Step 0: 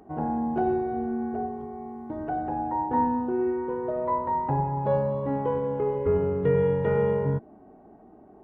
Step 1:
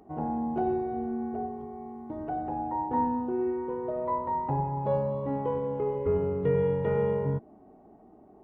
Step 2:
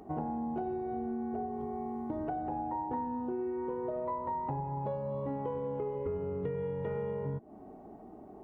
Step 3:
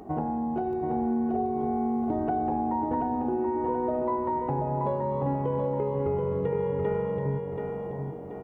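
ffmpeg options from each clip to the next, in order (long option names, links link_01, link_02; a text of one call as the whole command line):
ffmpeg -i in.wav -af "equalizer=frequency=1600:width=5.4:gain=-7.5,volume=-3dB" out.wav
ffmpeg -i in.wav -af "acompressor=threshold=-37dB:ratio=10,volume=4.5dB" out.wav
ffmpeg -i in.wav -af "aecho=1:1:730|1460|2190|2920|3650:0.562|0.236|0.0992|0.0417|0.0175,volume=6dB" out.wav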